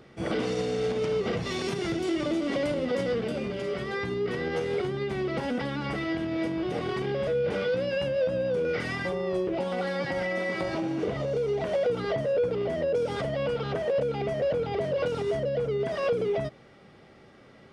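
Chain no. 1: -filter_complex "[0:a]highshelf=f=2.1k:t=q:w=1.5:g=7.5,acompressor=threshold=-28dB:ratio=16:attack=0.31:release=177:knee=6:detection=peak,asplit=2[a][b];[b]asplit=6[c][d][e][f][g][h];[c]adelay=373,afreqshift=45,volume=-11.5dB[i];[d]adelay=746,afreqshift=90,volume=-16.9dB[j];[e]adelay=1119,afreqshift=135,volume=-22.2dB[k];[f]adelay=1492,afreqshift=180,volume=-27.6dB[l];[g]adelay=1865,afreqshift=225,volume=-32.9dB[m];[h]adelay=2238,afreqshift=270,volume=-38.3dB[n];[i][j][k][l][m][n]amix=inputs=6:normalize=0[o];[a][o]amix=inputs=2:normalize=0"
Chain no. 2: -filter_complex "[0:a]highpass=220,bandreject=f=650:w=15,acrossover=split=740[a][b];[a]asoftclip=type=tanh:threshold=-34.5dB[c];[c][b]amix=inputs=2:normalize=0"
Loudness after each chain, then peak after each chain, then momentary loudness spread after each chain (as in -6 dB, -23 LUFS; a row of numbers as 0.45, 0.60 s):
-34.0, -33.5 LUFS; -23.5, -20.5 dBFS; 2, 3 LU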